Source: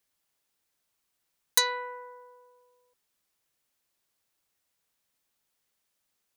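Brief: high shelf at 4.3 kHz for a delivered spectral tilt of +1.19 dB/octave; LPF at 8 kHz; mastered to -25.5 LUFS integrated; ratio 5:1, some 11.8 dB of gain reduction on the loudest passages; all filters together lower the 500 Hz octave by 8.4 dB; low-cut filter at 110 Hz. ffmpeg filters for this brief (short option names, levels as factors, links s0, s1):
-af "highpass=110,lowpass=8000,equalizer=f=500:t=o:g=-8.5,highshelf=f=4300:g=9,acompressor=threshold=0.0355:ratio=5,volume=3.55"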